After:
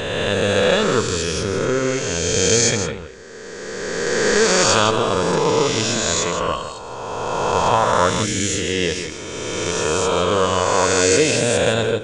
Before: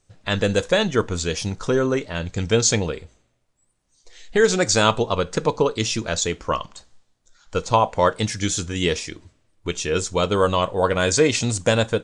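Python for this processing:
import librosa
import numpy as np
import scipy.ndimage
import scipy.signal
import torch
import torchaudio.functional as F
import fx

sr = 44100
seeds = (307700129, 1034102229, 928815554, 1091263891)

p1 = fx.spec_swells(x, sr, rise_s=2.69)
p2 = p1 + fx.echo_single(p1, sr, ms=161, db=-9.5, dry=0)
y = p2 * librosa.db_to_amplitude(-3.0)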